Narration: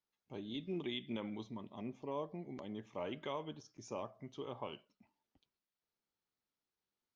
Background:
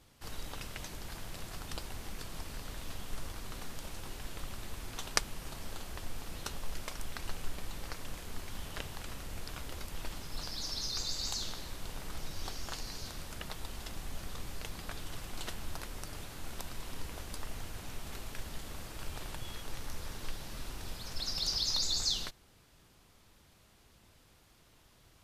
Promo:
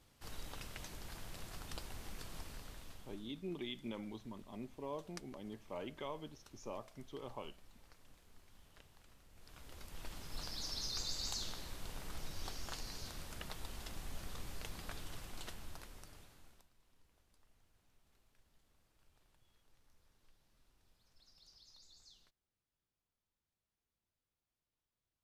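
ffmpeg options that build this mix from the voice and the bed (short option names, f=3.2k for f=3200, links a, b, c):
-filter_complex "[0:a]adelay=2750,volume=-3dB[a];[1:a]volume=11.5dB,afade=t=out:st=2.36:d=0.92:silence=0.158489,afade=t=in:st=9.34:d=1.07:silence=0.141254,afade=t=out:st=14.91:d=1.77:silence=0.0473151[b];[a][b]amix=inputs=2:normalize=0"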